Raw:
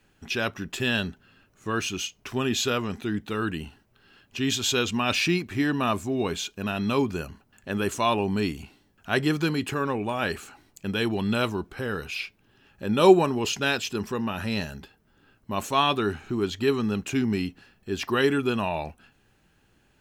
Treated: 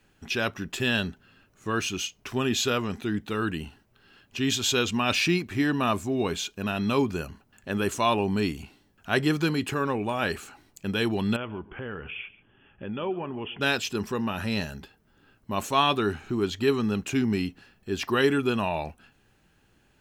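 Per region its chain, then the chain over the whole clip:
11.36–13.61 s: compression 2.5:1, threshold -34 dBFS + brick-wall FIR low-pass 3.5 kHz + delay 138 ms -19 dB
whole clip: none

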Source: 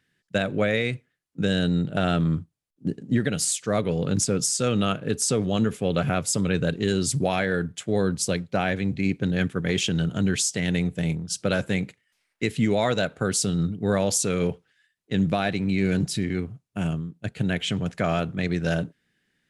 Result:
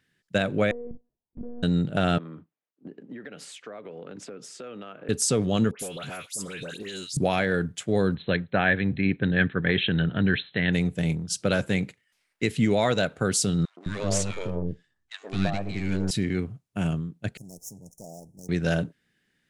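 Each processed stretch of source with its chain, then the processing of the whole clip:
0.71–1.63 s: elliptic low-pass 940 Hz, stop band 80 dB + compression 5:1, threshold -33 dBFS + monotone LPC vocoder at 8 kHz 240 Hz
2.18–5.09 s: high-pass 150 Hz + three-band isolator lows -14 dB, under 270 Hz, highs -23 dB, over 2.9 kHz + compression 10:1, threshold -36 dBFS
5.71–7.17 s: RIAA curve recording + compression 16:1, threshold -30 dBFS + phase dispersion highs, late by 85 ms, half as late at 1.9 kHz
8.15–10.73 s: brick-wall FIR low-pass 4.2 kHz + peaking EQ 1.7 kHz +10 dB 0.37 oct
13.65–16.11 s: partial rectifier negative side -12 dB + low-pass 8.9 kHz 24 dB/octave + three bands offset in time highs, mids, lows 120/210 ms, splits 390/1200 Hz
17.37–18.49 s: comb filter that takes the minimum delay 0.31 ms + Chebyshev band-stop 850–5400 Hz, order 5 + pre-emphasis filter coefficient 0.9
whole clip: none

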